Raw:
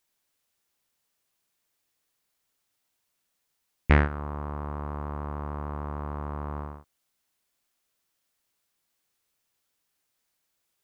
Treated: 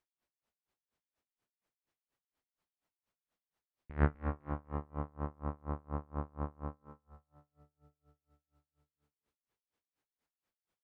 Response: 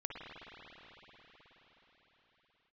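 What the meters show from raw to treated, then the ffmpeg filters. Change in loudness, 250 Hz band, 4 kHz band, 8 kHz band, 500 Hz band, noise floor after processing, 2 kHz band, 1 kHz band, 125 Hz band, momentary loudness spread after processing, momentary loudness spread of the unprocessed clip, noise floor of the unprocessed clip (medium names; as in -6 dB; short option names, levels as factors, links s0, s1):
-8.5 dB, -7.5 dB, under -20 dB, no reading, -8.0 dB, under -85 dBFS, -14.5 dB, -9.0 dB, -8.0 dB, 13 LU, 15 LU, -78 dBFS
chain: -filter_complex "[0:a]lowpass=f=1200:p=1,aecho=1:1:249|498|747|996:0.237|0.0925|0.0361|0.0141,asplit=2[s0][s1];[1:a]atrim=start_sample=2205[s2];[s1][s2]afir=irnorm=-1:irlink=0,volume=0.133[s3];[s0][s3]amix=inputs=2:normalize=0,aeval=exprs='val(0)*pow(10,-32*(0.5-0.5*cos(2*PI*4.2*n/s))/20)':c=same"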